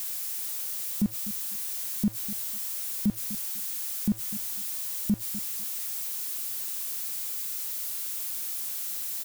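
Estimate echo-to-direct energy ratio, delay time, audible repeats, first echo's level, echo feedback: −14.5 dB, 249 ms, 2, −14.5 dB, 18%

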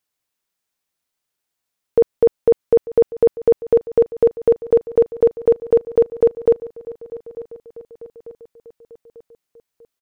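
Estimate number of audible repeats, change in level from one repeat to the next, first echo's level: 3, −6.0 dB, −17.5 dB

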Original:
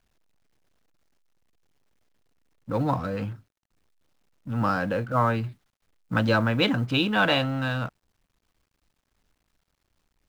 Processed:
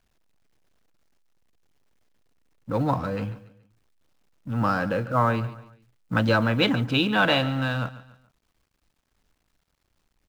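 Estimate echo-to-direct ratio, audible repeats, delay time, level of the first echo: −16.0 dB, 3, 142 ms, −16.5 dB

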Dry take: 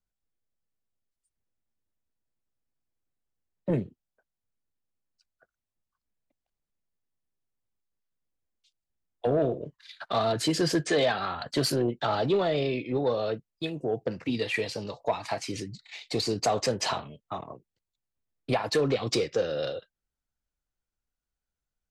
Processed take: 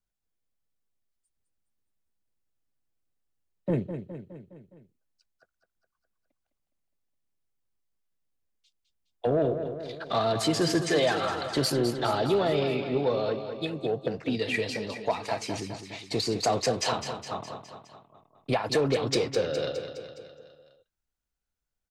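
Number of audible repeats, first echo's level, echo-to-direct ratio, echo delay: 5, −9.0 dB, −7.0 dB, 207 ms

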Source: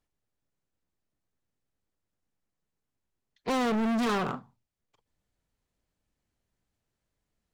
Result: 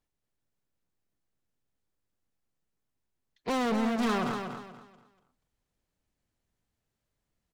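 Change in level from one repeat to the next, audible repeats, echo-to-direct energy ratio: −11.0 dB, 3, −6.5 dB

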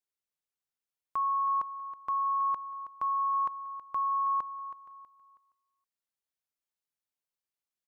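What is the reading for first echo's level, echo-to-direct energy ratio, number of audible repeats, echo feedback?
−13.0 dB, −12.5 dB, 3, 33%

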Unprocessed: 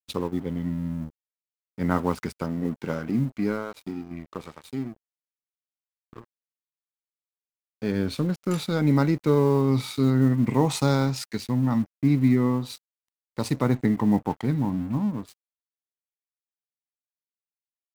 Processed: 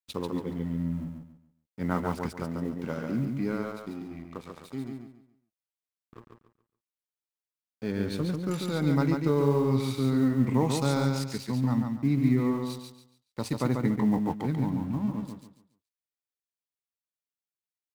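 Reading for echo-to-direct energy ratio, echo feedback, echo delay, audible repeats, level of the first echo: −4.0 dB, 29%, 141 ms, 3, −4.5 dB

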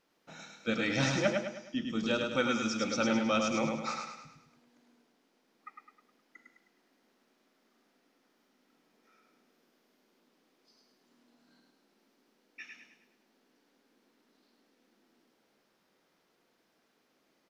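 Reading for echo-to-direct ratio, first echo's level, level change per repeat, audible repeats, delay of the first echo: −3.0 dB, −4.0 dB, −7.0 dB, 5, 104 ms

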